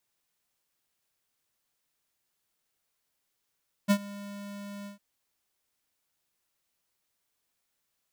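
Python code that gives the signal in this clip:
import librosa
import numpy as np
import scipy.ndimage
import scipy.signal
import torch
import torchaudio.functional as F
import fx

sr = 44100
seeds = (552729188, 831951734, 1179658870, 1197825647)

y = fx.adsr_tone(sr, wave='square', hz=202.0, attack_ms=28.0, decay_ms=68.0, sustain_db=-21.0, held_s=0.98, release_ms=124.0, level_db=-20.0)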